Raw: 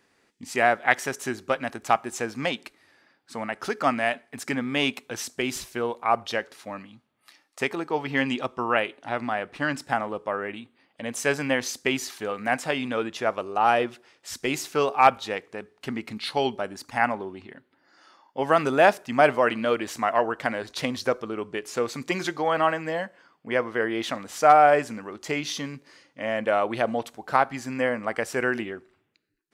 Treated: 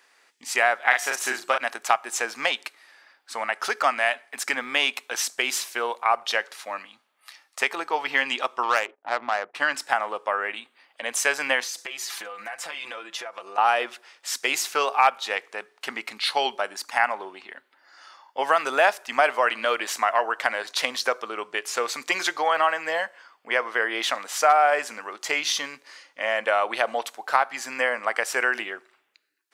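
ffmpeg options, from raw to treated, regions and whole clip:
-filter_complex "[0:a]asettb=1/sr,asplit=3[a][b][c];[a]atrim=end=0.894[d];[b]atrim=start=0.89:end=1.58,asetpts=PTS-STARTPTS,afade=t=in:d=0.004:c=qsin,afade=t=out:st=0.686:d=0.004:c=qsin,asplit=2[e][f];[f]adelay=39,volume=-4dB[g];[e][g]amix=inputs=2:normalize=0,atrim=end_sample=30429,bandreject=f=356.9:t=h:w=4,bandreject=f=713.8:t=h:w=4,bandreject=f=1.0707k:t=h:w=4,bandreject=f=1.4276k:t=h:w=4,bandreject=f=1.7845k:t=h:w=4,bandreject=f=2.1414k:t=h:w=4,bandreject=f=2.4983k:t=h:w=4,bandreject=f=2.8552k:t=h:w=4,bandreject=f=3.2121k:t=h:w=4,bandreject=f=3.569k:t=h:w=4,bandreject=f=3.9259k:t=h:w=4,bandreject=f=4.2828k:t=h:w=4,bandreject=f=4.6397k:t=h:w=4,bandreject=f=4.9966k:t=h:w=4,bandreject=f=5.3535k:t=h:w=4,bandreject=f=5.7104k:t=h:w=4,bandreject=f=6.0673k:t=h:w=4,bandreject=f=6.4242k:t=h:w=4,bandreject=f=6.7811k:t=h:w=4,bandreject=f=7.138k:t=h:w=4,bandreject=f=7.4949k:t=h:w=4,bandreject=f=7.8518k:t=h:w=4,bandreject=f=8.2087k:t=h:w=4,bandreject=f=8.5656k:t=h:w=4,bandreject=f=8.9225k:t=h:w=4,bandreject=f=9.2794k:t=h:w=4,bandreject=f=9.6363k:t=h:w=4,bandreject=f=9.9932k:t=h:w=4,bandreject=f=10.3501k:t=h:w=4,bandreject=f=10.707k:t=h:w=4,bandreject=f=11.0639k:t=h:w=4,bandreject=f=11.4208k:t=h:w=4,bandreject=f=11.7777k:t=h:w=4,bandreject=f=12.1346k:t=h:w=4[h];[c]atrim=start=1.576[i];[d][h]acrossfade=d=0.004:c1=hsin:c2=qsin[j];[j][i]acrossfade=d=0.004:c1=qsin:c2=hsin,asettb=1/sr,asplit=3[k][l][m];[k]atrim=end=8.634[n];[l]atrim=start=8.63:end=9.55,asetpts=PTS-STARTPTS,afade=t=in:d=0.004:c=qsin,afade=t=out:st=0.916:d=0.004:c=qsin,agate=range=-18dB:threshold=-49dB:ratio=16:release=100:detection=peak,highshelf=f=4.1k:g=-6,adynamicsmooth=sensitivity=1.5:basefreq=780[o];[m]atrim=start=9.546[p];[n][o]acrossfade=d=0.004:c1=hsin:c2=qsin[q];[q][p]acrossfade=d=0.004:c1=qsin:c2=hsin,asettb=1/sr,asplit=3[r][s][t];[r]atrim=end=11.634[u];[s]atrim=start=11.63:end=13.58,asetpts=PTS-STARTPTS,afade=t=in:d=0.004:c=qsin,afade=t=out:st=1.946:d=0.004:c=qsin,aecho=1:1:5.9:0.82,atrim=end_sample=85995,acompressor=threshold=-35dB:ratio=16:attack=3.2:release=140:knee=1:detection=peak[v];[t]atrim=start=13.576[w];[u][v]acrossfade=d=0.004:c1=hsin:c2=qsin[x];[x][w]acrossfade=d=0.004:c1=qsin:c2=hsin,highpass=770,acompressor=threshold=-27dB:ratio=2,volume=7.5dB"

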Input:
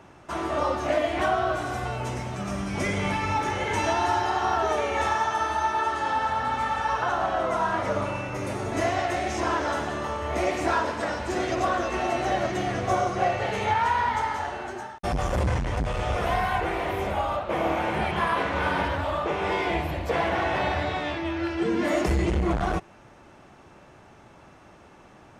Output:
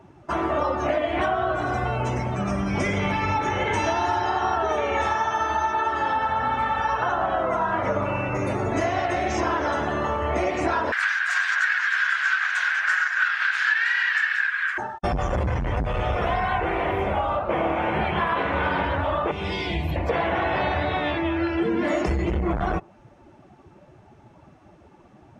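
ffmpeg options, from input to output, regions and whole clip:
-filter_complex "[0:a]asettb=1/sr,asplit=3[a][b][c];[a]atrim=end=10.924[d];[b]atrim=start=10.92:end=14.78,asetpts=PTS-STARTPTS,afade=t=in:d=0.004:c=qsin,afade=t=out:st=3.856:d=0.004:c=qsin,highshelf=f=4.4k:g=8,aeval=exprs='abs(val(0))':c=same,highpass=f=1.6k:t=q:w=12[e];[c]atrim=start=14.776[f];[d][e]acrossfade=d=0.004:c1=hsin:c2=qsin[g];[g][f]acrossfade=d=0.004:c1=qsin:c2=hsin,asettb=1/sr,asplit=3[h][i][j];[h]atrim=end=19.314[k];[i]atrim=start=19.31:end=19.96,asetpts=PTS-STARTPTS,afade=t=in:d=0.004:c=qsin,afade=t=out:st=0.646:d=0.004:c=qsin,highshelf=f=2.4k:g=5,acrossover=split=260|3000[l][m][n];[m]acompressor=threshold=-40dB:ratio=4:attack=3.2:release=140:knee=2.83:detection=peak[o];[l][o][n]amix=inputs=3:normalize=0[p];[j]atrim=start=19.956[q];[k][p]acrossfade=d=0.004:c1=hsin:c2=qsin[r];[r][q]acrossfade=d=0.004:c1=qsin:c2=hsin,afftdn=nr=14:nf=-42,highshelf=f=11k:g=-7,acompressor=threshold=-28dB:ratio=4,volume=7dB"

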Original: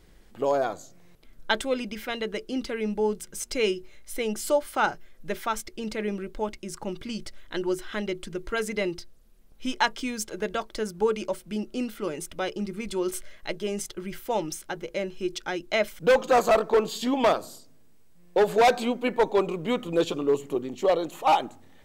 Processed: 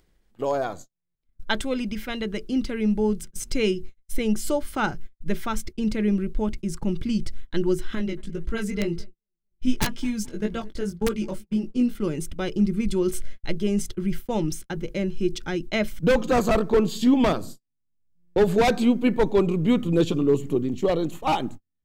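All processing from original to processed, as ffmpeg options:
-filter_complex "[0:a]asettb=1/sr,asplit=3[a][b][c];[a]atrim=end=7.954[d];[b]atrim=start=7.95:end=11.95,asetpts=PTS-STARTPTS,afade=t=in:d=0.004:c=qsin,afade=t=out:st=3.996:d=0.004:c=qsin,flanger=delay=17:depth=4:speed=1.9,aeval=exprs='(mod(7.5*val(0)+1,2)-1)/7.5':c=same,asplit=2[e][f];[f]adelay=220,lowpass=f=2.2k:p=1,volume=-21.5dB,asplit=2[g][h];[h]adelay=220,lowpass=f=2.2k:p=1,volume=0.49,asplit=2[i][j];[j]adelay=220,lowpass=f=2.2k:p=1,volume=0.49[k];[e][g][i][k]amix=inputs=4:normalize=0,atrim=end_sample=176400[l];[c]atrim=start=11.946[m];[d][l]acrossfade=d=0.004:c1=hsin:c2=qsin[n];[n][m]acrossfade=d=0.004:c1=qsin:c2=hsin,agate=range=-46dB:threshold=-40dB:ratio=16:detection=peak,asubboost=boost=6:cutoff=250,acompressor=mode=upward:threshold=-37dB:ratio=2.5"

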